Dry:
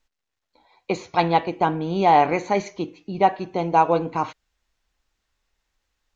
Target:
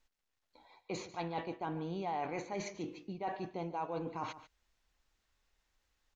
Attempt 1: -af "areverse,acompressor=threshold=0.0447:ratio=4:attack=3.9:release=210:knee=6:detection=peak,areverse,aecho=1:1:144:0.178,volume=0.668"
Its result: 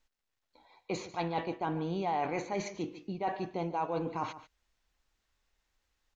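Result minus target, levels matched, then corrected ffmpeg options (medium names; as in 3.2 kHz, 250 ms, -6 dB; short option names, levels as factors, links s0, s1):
compression: peak gain reduction -5 dB
-af "areverse,acompressor=threshold=0.02:ratio=4:attack=3.9:release=210:knee=6:detection=peak,areverse,aecho=1:1:144:0.178,volume=0.668"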